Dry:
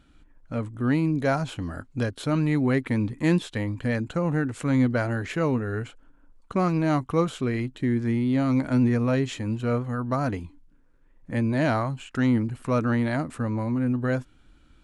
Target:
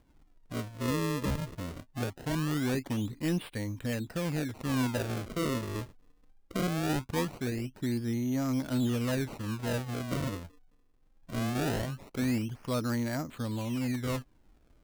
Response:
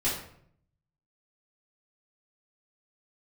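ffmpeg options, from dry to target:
-af "acrusher=samples=33:mix=1:aa=0.000001:lfo=1:lforange=52.8:lforate=0.21,asoftclip=type=tanh:threshold=0.178,volume=0.473"

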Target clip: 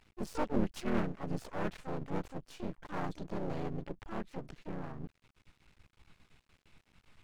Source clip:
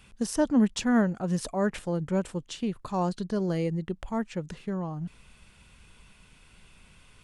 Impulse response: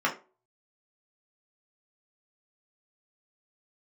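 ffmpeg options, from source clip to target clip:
-filter_complex "[0:a]asplit=3[s0][s1][s2];[s1]asetrate=37084,aresample=44100,atempo=1.18921,volume=0.891[s3];[s2]asetrate=66075,aresample=44100,atempo=0.66742,volume=0.708[s4];[s0][s3][s4]amix=inputs=3:normalize=0,aemphasis=mode=reproduction:type=50kf,aeval=exprs='max(val(0),0)':c=same,volume=0.376"

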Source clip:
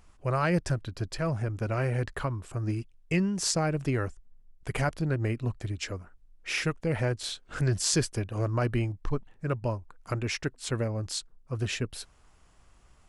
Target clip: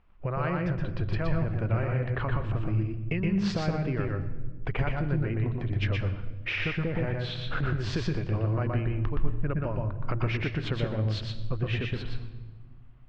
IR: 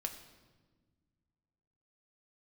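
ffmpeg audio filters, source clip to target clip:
-filter_complex "[0:a]agate=range=0.178:threshold=0.00316:ratio=16:detection=peak,lowpass=f=3200:w=0.5412,lowpass=f=3200:w=1.3066,acompressor=threshold=0.0126:ratio=6,asplit=2[s0][s1];[1:a]atrim=start_sample=2205,lowshelf=f=120:g=11.5,adelay=120[s2];[s1][s2]afir=irnorm=-1:irlink=0,volume=0.841[s3];[s0][s3]amix=inputs=2:normalize=0,volume=2.66"

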